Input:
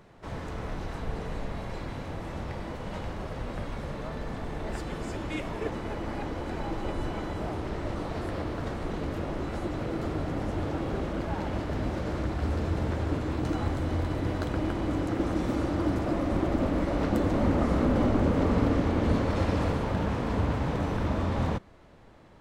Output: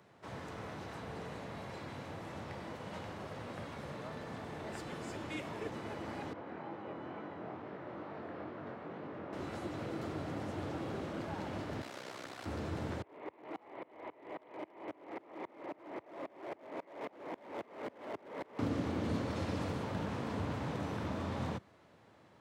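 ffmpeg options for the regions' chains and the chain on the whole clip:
-filter_complex "[0:a]asettb=1/sr,asplit=3[a][b][c];[a]atrim=end=6.334[d];[b]atrim=start=6.33:end=9.33,asetpts=PTS-STARTPTS,afade=t=in:d=0.004:c=qsin,afade=t=out:st=2.996:d=0.004:c=qsin,highpass=150,lowpass=2.1k,flanger=delay=19.5:depth=5.3:speed=2.2[e];[c]atrim=start=9.326[f];[d][e]acrossfade=d=0.004:c1=hsin:c2=qsin[g];[g][f]acrossfade=d=0.004:c1=qsin:c2=hsin,asettb=1/sr,asplit=3[h][i][j];[h]atrim=end=11.814[k];[i]atrim=start=11.81:end=12.46,asetpts=PTS-STARTPTS,afade=t=in:d=0.004:c=qsin,afade=t=out:st=0.646:d=0.004:c=qsin,highpass=f=670:p=1,highshelf=f=2.5k:g=8,aeval=exprs='val(0)*sin(2*PI*32*n/s)':c=same[l];[j]atrim=start=12.456[m];[k][l]acrossfade=d=0.004:c1=hsin:c2=qsin[n];[n][m]acrossfade=d=0.004:c1=qsin:c2=hsin,asettb=1/sr,asplit=3[o][p][q];[o]atrim=end=13.024[r];[p]atrim=start=13.02:end=18.59,asetpts=PTS-STARTPTS,afade=t=in:d=0.004:c=qsin,afade=t=out:st=5.566:d=0.004:c=qsin,highpass=390,equalizer=f=400:t=q:w=4:g=7,equalizer=f=630:t=q:w=4:g=5,equalizer=f=930:t=q:w=4:g=7,equalizer=f=1.5k:t=q:w=4:g=-9,equalizer=f=2.1k:t=q:w=4:g=7,lowpass=f=2.7k:w=0.5412,lowpass=f=2.7k:w=1.3066,asoftclip=type=hard:threshold=-26.5dB,aeval=exprs='val(0)*pow(10,-28*if(lt(mod(-3.7*n/s,1),2*abs(-3.7)/1000),1-mod(-3.7*n/s,1)/(2*abs(-3.7)/1000),(mod(-3.7*n/s,1)-2*abs(-3.7)/1000)/(1-2*abs(-3.7)/1000))/20)':c=same[s];[q]atrim=start=18.586[t];[r][s]acrossfade=d=0.004:c1=hsin:c2=qsin[u];[u][t]acrossfade=d=0.004:c1=qsin:c2=hsin,highpass=f=89:w=0.5412,highpass=f=89:w=1.3066,lowshelf=f=460:g=-4,acrossover=split=350|3000[v][w][x];[w]acompressor=threshold=-35dB:ratio=6[y];[v][y][x]amix=inputs=3:normalize=0,volume=-5dB"

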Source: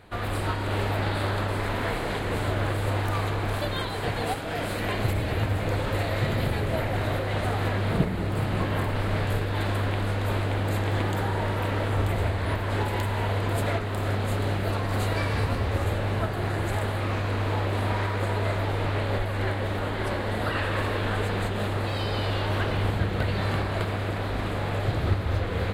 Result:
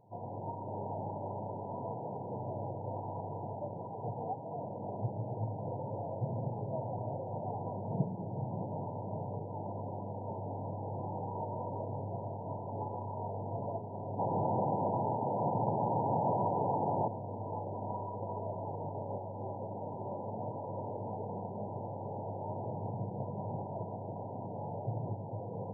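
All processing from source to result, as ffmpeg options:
-filter_complex "[0:a]asettb=1/sr,asplit=3[a][b][c];[a]atrim=end=10.344[d];[b]atrim=start=10.34:end=13.55,asetpts=PTS-STARTPTS,afade=t=in:d=0.004:c=qsin,afade=t=out:st=3.206:d=0.004:c=qsin,volume=22.5dB,asoftclip=hard,volume=-22.5dB,asplit=2[e][f];[f]adelay=22,volume=-5.5dB[g];[e][g]amix=inputs=2:normalize=0,atrim=end_sample=141561[h];[c]atrim=start=13.546[i];[d][h]acrossfade=d=0.004:c1=hsin:c2=qsin[j];[j][i]acrossfade=d=0.004:c1=qsin:c2=hsin,asettb=1/sr,asplit=3[k][l][m];[k]atrim=end=14.184[n];[l]atrim=start=14.18:end=17.08,asetpts=PTS-STARTPTS,afade=t=in:d=0.004:c=qsin,afade=t=out:st=2.896:d=0.004:c=qsin,highpass=f=220:p=1,aeval=exprs='0.141*sin(PI/2*6.31*val(0)/0.141)':c=same,aecho=1:1:130:0.631,atrim=end_sample=127890[o];[m]atrim=start=17.076[p];[n][o]acrossfade=d=0.004:c1=hsin:c2=qsin[q];[q][p]acrossfade=d=0.004:c1=qsin:c2=hsin,equalizer=f=320:t=o:w=1.4:g=-9,afftfilt=real='re*between(b*sr/4096,100,1000)':imag='im*between(b*sr/4096,100,1000)':win_size=4096:overlap=0.75,volume=-5dB"

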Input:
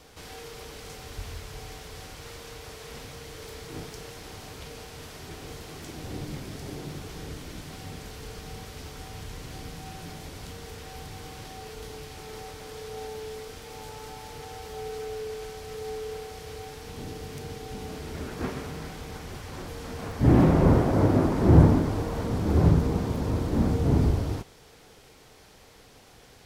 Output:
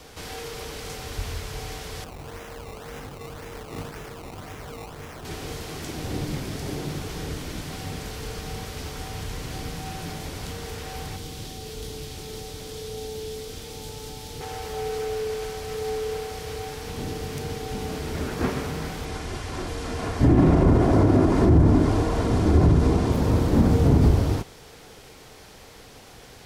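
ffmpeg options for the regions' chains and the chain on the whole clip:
-filter_complex "[0:a]asettb=1/sr,asplit=3[a][b][c];[a]atrim=end=2.044[d];[b]atrim=start=2.04:end=5.25,asetpts=PTS-STARTPTS,afade=t=in:d=0.004:c=qsin,afade=t=out:st=3.206:d=0.004:c=qsin,flanger=delay=19.5:depth=2.6:speed=1.1,acrusher=samples=19:mix=1:aa=0.000001:lfo=1:lforange=19:lforate=1.9[e];[c]atrim=start=5.246[f];[d][e]acrossfade=d=0.004:c1=hsin:c2=qsin[g];[g][f]acrossfade=d=0.004:c1=qsin:c2=hsin,asettb=1/sr,asplit=3[h][i][j];[h]atrim=end=11.164[k];[i]atrim=start=11.16:end=14.41,asetpts=PTS-STARTPTS,afade=t=in:d=0.004:c=qsin,afade=t=out:st=3.246:d=0.004:c=qsin,equalizer=f=3.5k:t=o:w=0.44:g=3,acrossover=split=470|3000[l][m][n];[m]acompressor=threshold=-55dB:ratio=4:attack=3.2:release=140:knee=2.83:detection=peak[o];[l][o][n]amix=inputs=3:normalize=0[p];[j]atrim=start=14.406[q];[k][p]acrossfade=d=0.004:c1=hsin:c2=qsin[r];[r][q]acrossfade=d=0.004:c1=qsin:c2=hsin,asettb=1/sr,asplit=3[s][t][u];[s]atrim=end=19.054[v];[t]atrim=start=19.05:end=23.12,asetpts=PTS-STARTPTS,afade=t=in:d=0.004:c=qsin,afade=t=out:st=4.066:d=0.004:c=qsin,lowpass=f=11k:w=0.5412,lowpass=f=11k:w=1.3066,aecho=1:1:2.9:0.3,atrim=end_sample=179487[w];[u]atrim=start=23.116[x];[v][w]acrossfade=d=0.004:c1=hsin:c2=qsin[y];[y][x]acrossfade=d=0.004:c1=qsin:c2=hsin,acrossover=split=310[z][aa];[aa]acompressor=threshold=-28dB:ratio=2[ab];[z][ab]amix=inputs=2:normalize=0,alimiter=level_in=14.5dB:limit=-1dB:release=50:level=0:latency=1,volume=-8dB"

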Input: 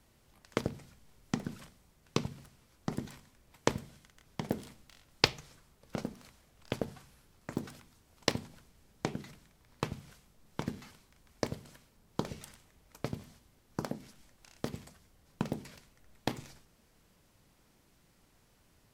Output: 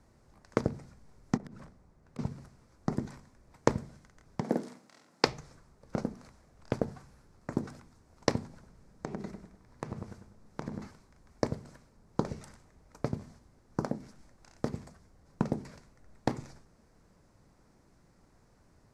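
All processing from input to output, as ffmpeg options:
-filter_complex "[0:a]asettb=1/sr,asplit=3[a][b][c];[a]atrim=end=1.374[d];[b]atrim=start=1.37:end=2.19,asetpts=PTS-STARTPTS,afade=t=in:d=0.004:c=qsin,afade=t=out:st=0.816:d=0.004:c=qsin,highshelf=f=2.5k:g=-8.5,acompressor=threshold=-45dB:ratio=20:attack=3.2:release=140:knee=1:detection=peak,aeval=exprs='(mod(84.1*val(0)+1,2)-1)/84.1':c=same[e];[c]atrim=start=2.186[f];[d][e]acrossfade=d=0.004:c1=hsin:c2=qsin[g];[g][f]acrossfade=d=0.004:c1=qsin:c2=hsin,asettb=1/sr,asplit=3[h][i][j];[h]atrim=end=4.414[k];[i]atrim=start=4.41:end=5.27,asetpts=PTS-STARTPTS,afade=t=in:d=0.004:c=qsin,afade=t=out:st=0.856:d=0.004:c=qsin,highpass=f=180:w=0.5412,highpass=f=180:w=1.3066,asplit=2[l][m];[m]adelay=49,volume=-2.5dB[n];[l][n]amix=inputs=2:normalize=0,atrim=end_sample=37926[o];[j]atrim=start=5.266[p];[k][o]acrossfade=d=0.004:c1=hsin:c2=qsin[q];[q][p]acrossfade=d=0.004:c1=qsin:c2=hsin,asettb=1/sr,asplit=3[r][s][t];[r]atrim=end=8.534[u];[s]atrim=start=8.53:end=10.87,asetpts=PTS-STARTPTS,afade=t=in:d=0.004:c=qsin,afade=t=out:st=2.336:d=0.004:c=qsin,asplit=2[v][w];[w]adelay=98,lowpass=f=1.4k:p=1,volume=-6.5dB,asplit=2[x][y];[y]adelay=98,lowpass=f=1.4k:p=1,volume=0.44,asplit=2[z][aa];[aa]adelay=98,lowpass=f=1.4k:p=1,volume=0.44,asplit=2[ab][ac];[ac]adelay=98,lowpass=f=1.4k:p=1,volume=0.44,asplit=2[ad][ae];[ae]adelay=98,lowpass=f=1.4k:p=1,volume=0.44[af];[v][x][z][ab][ad][af]amix=inputs=6:normalize=0,atrim=end_sample=103194,acompressor=threshold=-36dB:ratio=10:attack=3.2:release=140:knee=1:detection=peak[ag];[t]atrim=start=10.866[ah];[u][ag]acrossfade=d=0.004:c1=hsin:c2=qsin[ai];[ai][ah]acrossfade=d=0.004:c1=qsin:c2=hsin,lowpass=6k,equalizer=f=3.1k:w=1.4:g=-15,volume=4.5dB"

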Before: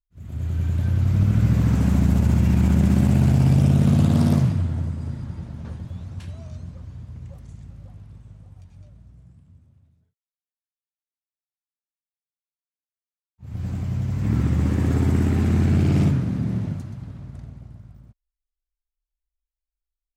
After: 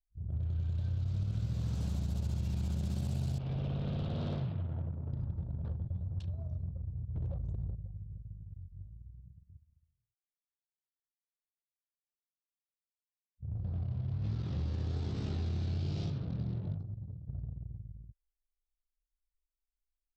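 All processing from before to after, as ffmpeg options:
-filter_complex "[0:a]asettb=1/sr,asplit=3[a][b][c];[a]atrim=end=3.384[d];[b]atrim=start=3.38:end=5.13,asetpts=PTS-STARTPTS,afade=t=in:d=0.004:c=qsin,afade=t=out:st=1.746:d=0.004:c=qsin,lowpass=f=3.2k:w=0.5412,lowpass=f=3.2k:w=1.3066,lowshelf=f=160:g=-10.5,asoftclip=type=hard:threshold=-19.5dB[e];[c]atrim=start=5.126[f];[d][e]acrossfade=d=0.004:c1=hsin:c2=qsin[g];[g][f]acrossfade=d=0.004:c1=qsin:c2=hsin,asettb=1/sr,asplit=3[h][i][j];[h]atrim=end=7.154[k];[i]atrim=start=7.15:end=7.75,asetpts=PTS-STARTPTS,afade=t=in:d=0.004:c=qsin,afade=t=out:st=0.596:d=0.004:c=qsin,highshelf=f=6.4k:g=-5,acontrast=85,aeval=exprs='0.0531*(abs(mod(val(0)/0.0531+3,4)-2)-1)':c=same[l];[j]atrim=start=7.746[m];[k][l]acrossfade=d=0.004:c1=hsin:c2=qsin[n];[n][m]acrossfade=d=0.004:c1=qsin:c2=hsin,asettb=1/sr,asplit=3[o][p][q];[o]atrim=end=13.544[r];[p]atrim=start=13.54:end=17.28,asetpts=PTS-STARTPTS,afade=t=in:d=0.004:c=qsin,afade=t=out:st=3.736:d=0.004:c=qsin,lowpass=f=5.5k:w=0.5412,lowpass=f=5.5k:w=1.3066,flanger=delay=18.5:depth=7.2:speed=1.2,bass=f=250:g=-2,treble=f=4k:g=5[s];[q]atrim=start=17.276[t];[r][s]acrossfade=d=0.004:c1=hsin:c2=qsin[u];[u][t]acrossfade=d=0.004:c1=qsin:c2=hsin,anlmdn=0.398,equalizer=f=250:t=o:w=1:g=-11,equalizer=f=1k:t=o:w=1:g=-5,equalizer=f=2k:t=o:w=1:g=-11,equalizer=f=4k:t=o:w=1:g=9,acompressor=threshold=-32dB:ratio=6"

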